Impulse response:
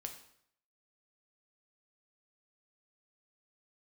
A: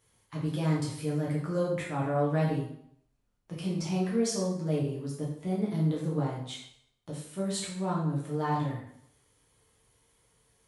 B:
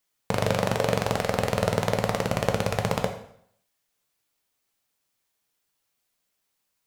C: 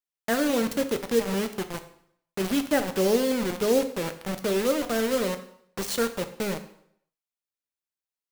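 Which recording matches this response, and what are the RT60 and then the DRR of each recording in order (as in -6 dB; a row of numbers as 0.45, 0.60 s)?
B; 0.65, 0.65, 0.65 s; -5.5, 4.0, 8.0 dB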